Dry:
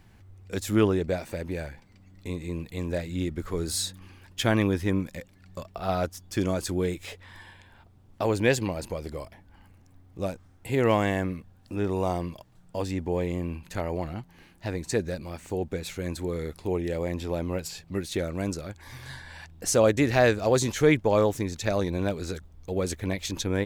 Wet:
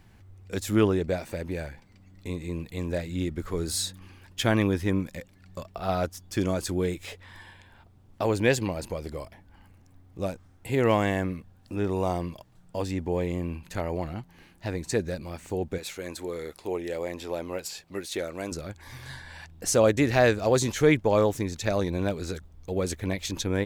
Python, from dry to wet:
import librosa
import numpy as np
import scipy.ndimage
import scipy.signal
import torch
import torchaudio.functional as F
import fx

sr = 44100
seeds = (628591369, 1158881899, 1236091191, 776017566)

y = fx.bass_treble(x, sr, bass_db=-13, treble_db=1, at=(15.78, 18.52))